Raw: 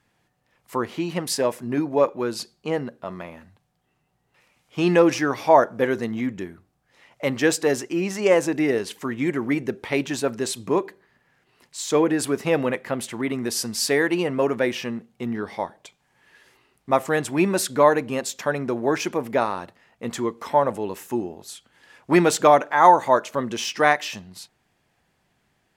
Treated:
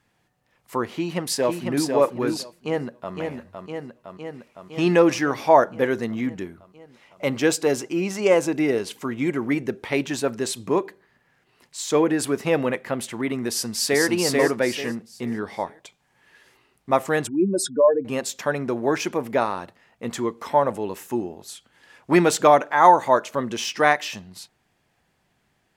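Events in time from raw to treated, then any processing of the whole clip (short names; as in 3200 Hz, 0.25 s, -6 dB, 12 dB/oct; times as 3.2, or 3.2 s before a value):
0.92–1.87 echo throw 0.5 s, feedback 15%, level -4 dB
2.56–3.15 echo throw 0.51 s, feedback 75%, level -5 dB
6.43–9.42 notch 1800 Hz, Q 10
13.48–14.03 echo throw 0.44 s, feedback 30%, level -1.5 dB
17.27–18.05 spectral contrast raised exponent 2.7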